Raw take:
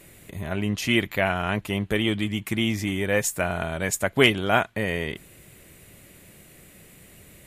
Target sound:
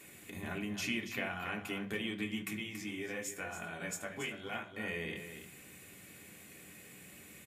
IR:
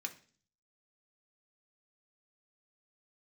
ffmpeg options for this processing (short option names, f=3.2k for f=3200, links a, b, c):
-filter_complex "[0:a]acompressor=threshold=-31dB:ratio=6,asplit=3[a][b][c];[a]afade=t=out:st=2.5:d=0.02[d];[b]flanger=delay=17.5:depth=2.4:speed=1.3,afade=t=in:st=2.5:d=0.02,afade=t=out:st=4.8:d=0.02[e];[c]afade=t=in:st=4.8:d=0.02[f];[d][e][f]amix=inputs=3:normalize=0,aecho=1:1:281:0.335[g];[1:a]atrim=start_sample=2205[h];[g][h]afir=irnorm=-1:irlink=0,volume=-1.5dB"